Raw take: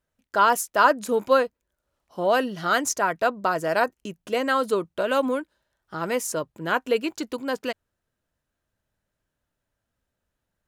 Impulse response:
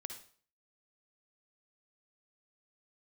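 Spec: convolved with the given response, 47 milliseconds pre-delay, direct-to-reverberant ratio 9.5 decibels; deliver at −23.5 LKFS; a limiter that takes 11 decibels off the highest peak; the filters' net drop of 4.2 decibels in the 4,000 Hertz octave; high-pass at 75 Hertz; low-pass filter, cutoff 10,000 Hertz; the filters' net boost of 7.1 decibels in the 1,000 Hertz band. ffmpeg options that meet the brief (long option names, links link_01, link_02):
-filter_complex "[0:a]highpass=75,lowpass=10000,equalizer=frequency=1000:width_type=o:gain=9,equalizer=frequency=4000:width_type=o:gain=-7,alimiter=limit=-8.5dB:level=0:latency=1,asplit=2[link_01][link_02];[1:a]atrim=start_sample=2205,adelay=47[link_03];[link_02][link_03]afir=irnorm=-1:irlink=0,volume=-6.5dB[link_04];[link_01][link_04]amix=inputs=2:normalize=0,volume=-1.5dB"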